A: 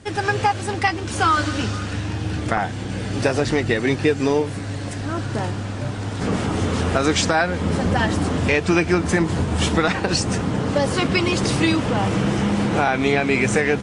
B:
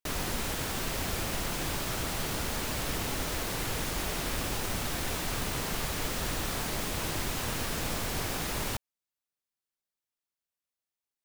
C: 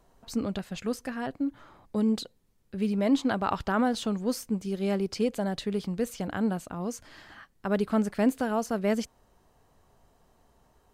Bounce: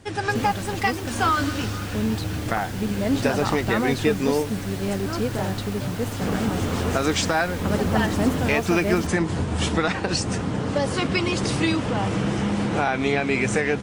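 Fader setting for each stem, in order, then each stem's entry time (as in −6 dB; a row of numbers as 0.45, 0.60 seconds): −3.5, −6.5, +0.5 decibels; 0.00, 0.30, 0.00 seconds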